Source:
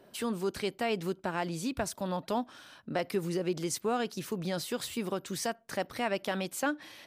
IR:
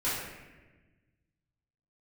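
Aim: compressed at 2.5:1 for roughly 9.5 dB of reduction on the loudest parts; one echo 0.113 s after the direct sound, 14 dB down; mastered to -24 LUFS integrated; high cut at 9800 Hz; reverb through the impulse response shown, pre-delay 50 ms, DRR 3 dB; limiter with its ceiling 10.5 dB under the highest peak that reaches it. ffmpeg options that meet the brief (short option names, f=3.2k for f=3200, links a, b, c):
-filter_complex "[0:a]lowpass=9.8k,acompressor=threshold=-41dB:ratio=2.5,alimiter=level_in=13.5dB:limit=-24dB:level=0:latency=1,volume=-13.5dB,aecho=1:1:113:0.2,asplit=2[a][b];[1:a]atrim=start_sample=2205,adelay=50[c];[b][c]afir=irnorm=-1:irlink=0,volume=-12dB[d];[a][d]amix=inputs=2:normalize=0,volume=21.5dB"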